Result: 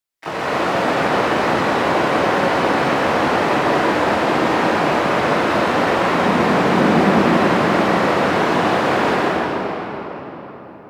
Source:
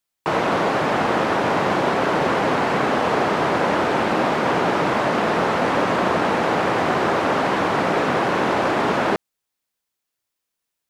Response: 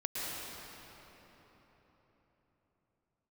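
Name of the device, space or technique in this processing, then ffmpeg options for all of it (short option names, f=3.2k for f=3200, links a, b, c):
shimmer-style reverb: -filter_complex "[0:a]asettb=1/sr,asplit=3[a][b][c];[a]atrim=end=6.254[d];[b]atrim=start=6.25:end=7.26,asetpts=PTS-STARTPTS,afade=t=in:d=0.004:c=qsin,afade=t=out:st=1.006:d=0.004:c=qsin,equalizer=f=200:t=o:w=0.73:g=14[e];[c]atrim=start=7.256[f];[d][e]acrossfade=d=0.004:c1=hsin:c2=qsin[g];[g][f]acrossfade=d=0.004:c1=qsin:c2=hsin,asplit=2[h][i];[i]asetrate=88200,aresample=44100,atempo=0.5,volume=-8dB[j];[h][j]amix=inputs=2:normalize=0[k];[1:a]atrim=start_sample=2205[l];[k][l]afir=irnorm=-1:irlink=0,volume=-3dB"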